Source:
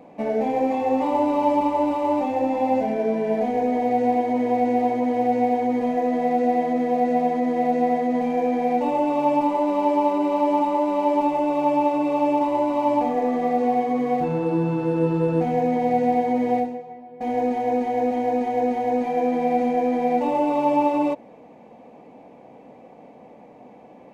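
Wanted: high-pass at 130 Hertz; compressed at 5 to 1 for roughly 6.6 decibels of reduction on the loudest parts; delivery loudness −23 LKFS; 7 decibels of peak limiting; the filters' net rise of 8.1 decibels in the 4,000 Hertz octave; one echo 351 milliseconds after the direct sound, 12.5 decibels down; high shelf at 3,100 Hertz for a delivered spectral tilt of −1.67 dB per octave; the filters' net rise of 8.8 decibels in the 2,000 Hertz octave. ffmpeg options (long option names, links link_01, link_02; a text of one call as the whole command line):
ffmpeg -i in.wav -af "highpass=130,equalizer=frequency=2000:width_type=o:gain=7,highshelf=frequency=3100:gain=6,equalizer=frequency=4000:width_type=o:gain=3.5,acompressor=threshold=-22dB:ratio=5,alimiter=limit=-21.5dB:level=0:latency=1,aecho=1:1:351:0.237,volume=6dB" out.wav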